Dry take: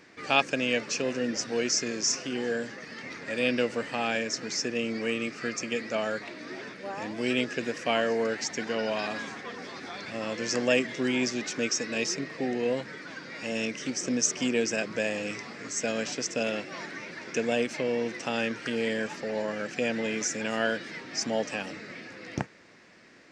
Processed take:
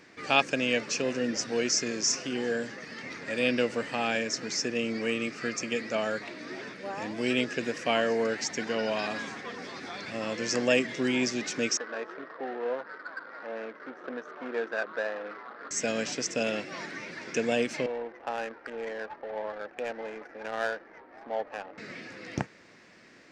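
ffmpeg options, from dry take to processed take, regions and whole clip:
-filter_complex "[0:a]asettb=1/sr,asplit=3[s0][s1][s2];[s0]atrim=end=11.774[s3];[s1]atrim=start=11.77:end=15.71,asetpts=PTS-STARTPTS,afade=t=in:d=0.004:c=qsin,afade=t=out:st=3.936:d=0.004:c=qsin,highshelf=f=2100:t=q:w=3:g=-13.5,adynamicsmooth=sensitivity=4.5:basefreq=940,highpass=530,lowpass=5100[s4];[s2]atrim=start=15.706[s5];[s3][s4]acrossfade=d=0.004:c1=hsin:c2=qsin[s6];[s6][s5]acrossfade=d=0.004:c1=qsin:c2=hsin,asettb=1/sr,asplit=3[s7][s8][s9];[s7]atrim=end=17.864[s10];[s8]atrim=start=17.86:end=21.78,asetpts=PTS-STARTPTS,afade=t=in:d=0.004:c=qsin,afade=t=out:st=3.916:d=0.004:c=qsin,highpass=580,lowpass=2000,equalizer=f=820:t=o:w=0.28:g=5,adynamicsmooth=sensitivity=3:basefreq=750[s11];[s9]atrim=start=21.776[s12];[s10][s11]acrossfade=d=0.004:c1=hsin:c2=qsin[s13];[s13][s12]acrossfade=d=0.004:c1=qsin:c2=hsin"

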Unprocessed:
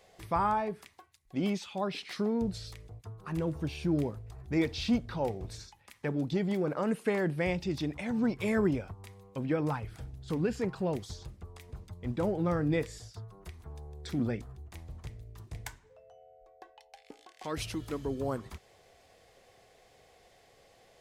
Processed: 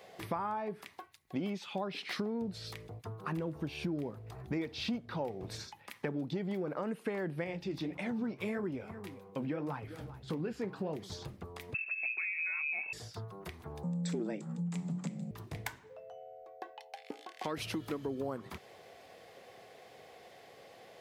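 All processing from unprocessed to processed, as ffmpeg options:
-filter_complex "[0:a]asettb=1/sr,asplit=3[s0][s1][s2];[s0]atrim=end=7.444[s3];[s1]atrim=start=7.44:end=11.12,asetpts=PTS-STARTPTS,afade=t=in:d=0.004:c=qsin,afade=t=out:st=3.676:d=0.004:c=qsin,aecho=1:1:393:0.075,atrim=end_sample=162288,flanger=delay=5.8:depth=9.2:regen=-58:speed=1.7:shape=triangular[s4];[s2]atrim=start=11.116[s5];[s3][s4]acrossfade=d=0.004:c1=hsin:c2=qsin[s6];[s6][s5]acrossfade=d=0.004:c1=qsin:c2=hsin,asettb=1/sr,asplit=3[s7][s8][s9];[s7]atrim=end=11.744[s10];[s8]atrim=start=11.74:end=12.93,asetpts=PTS-STARTPTS,afade=t=in:d=0.004:c=qsin,afade=t=out:st=1.186:d=0.004:c=qsin,lowshelf=f=250:g=9,acompressor=threshold=0.0178:ratio=2:attack=3.2:release=140:knee=1:detection=peak,lowpass=f=2300:t=q:w=0.5098,lowpass=f=2300:t=q:w=0.6013,lowpass=f=2300:t=q:w=0.9,lowpass=f=2300:t=q:w=2.563,afreqshift=-2700[s11];[s9]atrim=start=12.926[s12];[s10][s11]acrossfade=d=0.004:c1=hsin:c2=qsin[s13];[s13][s12]acrossfade=d=0.004:c1=qsin:c2=hsin,asettb=1/sr,asplit=3[s14][s15][s16];[s14]atrim=end=13.834[s17];[s15]atrim=start=13.83:end=15.31,asetpts=PTS-STARTPTS,afade=t=in:d=0.004:c=qsin,afade=t=out:st=1.476:d=0.004:c=qsin,lowpass=f=7500:t=q:w=8.9,equalizer=f=72:t=o:w=0.31:g=14,afreqshift=100[s18];[s16]atrim=start=15.306[s19];[s17][s18]acrossfade=d=0.004:c1=hsin:c2=qsin[s20];[s20][s19]acrossfade=d=0.004:c1=qsin:c2=hsin,highpass=150,equalizer=f=7600:t=o:w=1.3:g=-7.5,acompressor=threshold=0.00891:ratio=6,volume=2.24"

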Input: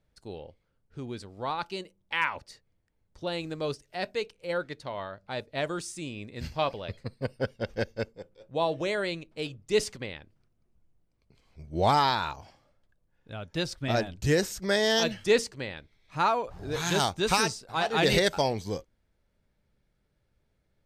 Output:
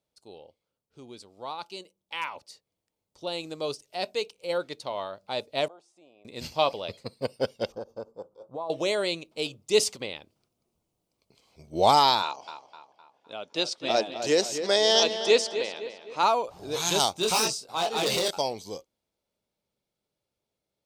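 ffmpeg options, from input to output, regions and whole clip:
-filter_complex "[0:a]asettb=1/sr,asplit=3[s0][s1][s2];[s0]atrim=end=5.684[s3];[s1]atrim=start=5.68:end=6.25,asetpts=PTS-STARTPTS,afade=t=in:d=0.004:c=qsin,afade=t=out:st=0.566:d=0.004:c=qsin,bandpass=f=710:t=q:w=5,acompressor=threshold=0.00126:ratio=1.5:attack=3.2:release=140:knee=1:detection=peak[s4];[s2]atrim=start=6.246[s5];[s3][s4]acrossfade=d=0.004:c1=hsin:c2=qsin[s6];[s6][s5]acrossfade=d=0.004:c1=qsin:c2=hsin,asettb=1/sr,asplit=3[s7][s8][s9];[s7]atrim=end=7.724[s10];[s8]atrim=start=7.72:end=8.7,asetpts=PTS-STARTPTS,afade=t=in:d=0.004:c=qsin,afade=t=out:st=0.976:d=0.004:c=qsin,highshelf=f=1600:t=q:w=3:g=-11.5,bandreject=f=2000:w=6.3,acompressor=threshold=0.0158:ratio=5:attack=3.2:release=140:knee=1:detection=peak[s11];[s9]atrim=start=8.696[s12];[s10][s11]acrossfade=d=0.004:c1=hsin:c2=qsin[s13];[s13][s12]acrossfade=d=0.004:c1=qsin:c2=hsin,asettb=1/sr,asplit=3[s14][s15][s16];[s14]atrim=end=12.224[s17];[s15]atrim=start=12.22:end=16.23,asetpts=PTS-STARTPTS,afade=t=in:d=0.004:c=qsin,afade=t=out:st=4.006:d=0.004:c=qsin,highpass=270,lowpass=6300,asplit=2[s18][s19];[s19]adelay=256,lowpass=f=3700:p=1,volume=0.335,asplit=2[s20][s21];[s21]adelay=256,lowpass=f=3700:p=1,volume=0.47,asplit=2[s22][s23];[s23]adelay=256,lowpass=f=3700:p=1,volume=0.47,asplit=2[s24][s25];[s25]adelay=256,lowpass=f=3700:p=1,volume=0.47,asplit=2[s26][s27];[s27]adelay=256,lowpass=f=3700:p=1,volume=0.47[s28];[s18][s20][s22][s24][s26][s28]amix=inputs=6:normalize=0,atrim=end_sample=176841[s29];[s16]atrim=start=16.226[s30];[s17][s29]acrossfade=d=0.004:c1=hsin:c2=qsin[s31];[s31][s30]acrossfade=d=0.004:c1=qsin:c2=hsin,asettb=1/sr,asplit=3[s32][s33][s34];[s32]atrim=end=17.134[s35];[s33]atrim=start=17.13:end=18.31,asetpts=PTS-STARTPTS,afade=t=in:d=0.004:c=qsin,afade=t=out:st=1.176:d=0.004:c=qsin,bandreject=f=50:t=h:w=6,bandreject=f=100:t=h:w=6,bandreject=f=150:t=h:w=6,asplit=2[s36][s37];[s37]adelay=23,volume=0.596[s38];[s36][s38]amix=inputs=2:normalize=0,atrim=end_sample=52038,asoftclip=type=hard:threshold=0.0891[s39];[s34]atrim=start=18.306[s40];[s35][s39]acrossfade=d=0.004:c1=hsin:c2=qsin[s41];[s41][s40]acrossfade=d=0.004:c1=qsin:c2=hsin,highpass=f=690:p=1,equalizer=f=1700:t=o:w=0.82:g=-14,dynaudnorm=f=230:g=31:m=2.82"

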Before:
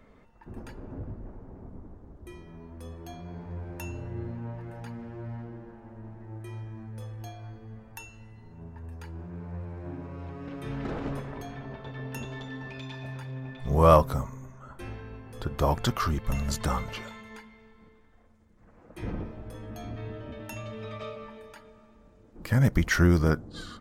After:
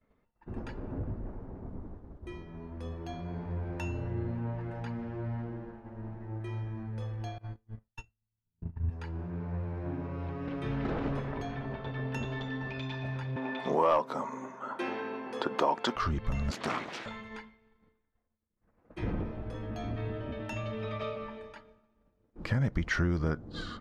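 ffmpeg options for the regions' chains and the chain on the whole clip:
-filter_complex "[0:a]asettb=1/sr,asplit=3[s0][s1][s2];[s0]atrim=end=7.384[s3];[s1]atrim=start=7.38:end=8.9,asetpts=PTS-STARTPTS,afade=t=in:d=0.004:c=qsin,afade=t=out:st=1.516:d=0.004:c=qsin,agate=range=0.0708:threshold=0.00794:ratio=16:release=100:detection=peak,asubboost=boost=10:cutoff=210[s4];[s2]atrim=start=8.896[s5];[s3][s4]acrossfade=d=0.004:c1=hsin:c2=qsin[s6];[s6][s5]acrossfade=d=0.004:c1=qsin:c2=hsin,asettb=1/sr,asplit=3[s7][s8][s9];[s7]atrim=end=13.364[s10];[s8]atrim=start=13.36:end=15.96,asetpts=PTS-STARTPTS,afade=t=in:d=0.004:c=qsin,afade=t=out:st=2.596:d=0.004:c=qsin,highpass=f=250:w=0.5412,highpass=f=250:w=1.3066,equalizer=f=920:w=6.6:g=7,acontrast=80[s11];[s9]atrim=start=15.956[s12];[s10][s11]acrossfade=d=0.004:c1=hsin:c2=qsin[s13];[s13][s12]acrossfade=d=0.004:c1=qsin:c2=hsin,asettb=1/sr,asplit=3[s14][s15][s16];[s14]atrim=end=16.514[s17];[s15]atrim=start=16.51:end=17.06,asetpts=PTS-STARTPTS,afade=t=in:d=0.004:c=qsin,afade=t=out:st=0.546:d=0.004:c=qsin,highshelf=f=9500:g=6.5,aeval=exprs='abs(val(0))':c=same,highpass=220[s18];[s16]atrim=start=17.056[s19];[s17][s18]acrossfade=d=0.004:c1=hsin:c2=qsin[s20];[s20][s19]acrossfade=d=0.004:c1=qsin:c2=hsin,lowpass=4400,agate=range=0.0224:threshold=0.00631:ratio=3:detection=peak,acompressor=threshold=0.0282:ratio=3,volume=1.33"

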